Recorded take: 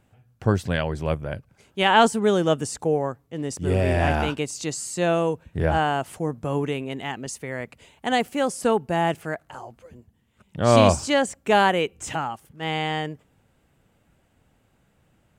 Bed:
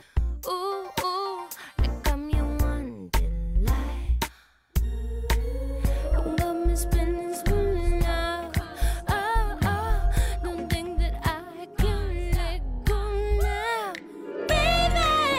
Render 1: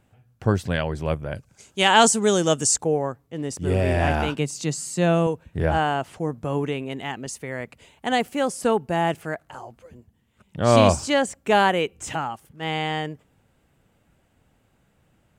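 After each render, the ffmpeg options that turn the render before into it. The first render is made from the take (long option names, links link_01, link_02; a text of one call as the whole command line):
ffmpeg -i in.wav -filter_complex "[0:a]asettb=1/sr,asplit=3[link_01][link_02][link_03];[link_01]atrim=end=1.354[link_04];[link_02]atrim=start=1.35:end=2.78,asetpts=PTS-STARTPTS,afade=type=in:duration=0.004:curve=qsin,afade=type=out:start_time=1.426:duration=0.004:curve=qsin,equalizer=frequency=7000:width=0.9:gain=15[link_05];[link_03]atrim=start=2.776[link_06];[link_04][link_05]acrossfade=duration=0.004:curve1=hsin:curve2=qsin[link_07];[link_07][link_06]acrossfade=duration=0.004:curve1=qsin:curve2=hsin,asettb=1/sr,asplit=3[link_08][link_09][link_10];[link_08]atrim=end=4.354[link_11];[link_09]atrim=start=4.35:end=5.27,asetpts=PTS-STARTPTS,afade=type=in:duration=0.004:curve=qsin,afade=type=out:start_time=0.916:duration=0.004:curve=qsin,lowshelf=frequency=100:width_type=q:width=3:gain=-13.5[link_12];[link_10]atrim=start=5.266[link_13];[link_11][link_12]acrossfade=duration=0.004:curve1=hsin:curve2=qsin[link_14];[link_14][link_13]acrossfade=duration=0.004:curve1=qsin:curve2=hsin,asettb=1/sr,asplit=3[link_15][link_16][link_17];[link_15]atrim=end=5.944[link_18];[link_16]atrim=start=5.94:end=6.89,asetpts=PTS-STARTPTS,afade=type=in:duration=0.004:curve=qsin,afade=type=out:start_time=0.946:duration=0.004:curve=qsin,acrossover=split=6500[link_19][link_20];[link_20]acompressor=threshold=-56dB:ratio=4:attack=1:release=60[link_21];[link_19][link_21]amix=inputs=2:normalize=0[link_22];[link_17]atrim=start=6.886[link_23];[link_18][link_22]acrossfade=duration=0.004:curve1=hsin:curve2=qsin[link_24];[link_24][link_23]acrossfade=duration=0.004:curve1=qsin:curve2=hsin" out.wav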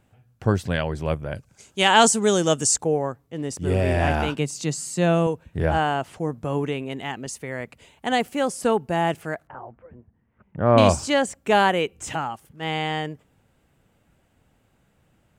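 ffmpeg -i in.wav -filter_complex "[0:a]asettb=1/sr,asplit=3[link_01][link_02][link_03];[link_01]atrim=end=9.474[link_04];[link_02]atrim=start=9.47:end=10.78,asetpts=PTS-STARTPTS,afade=type=in:duration=0.004:curve=qsin,afade=type=out:start_time=1.306:duration=0.004:curve=qsin,lowpass=frequency=1900:width=0.5412,lowpass=frequency=1900:width=1.3066[link_05];[link_03]atrim=start=10.776[link_06];[link_04][link_05]acrossfade=duration=0.004:curve1=hsin:curve2=qsin[link_07];[link_07][link_06]acrossfade=duration=0.004:curve1=qsin:curve2=hsin" out.wav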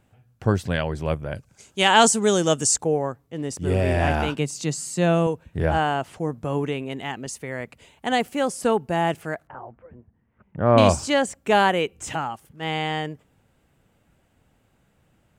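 ffmpeg -i in.wav -af anull out.wav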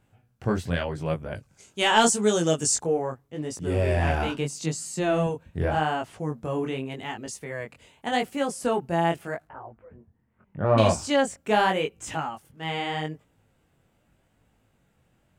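ffmpeg -i in.wav -af "asoftclip=type=tanh:threshold=-5dB,flanger=delay=18:depth=6:speed=0.83" out.wav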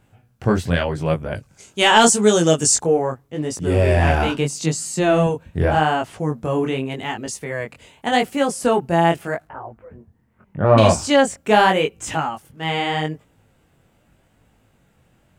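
ffmpeg -i in.wav -af "volume=7.5dB,alimiter=limit=-2dB:level=0:latency=1" out.wav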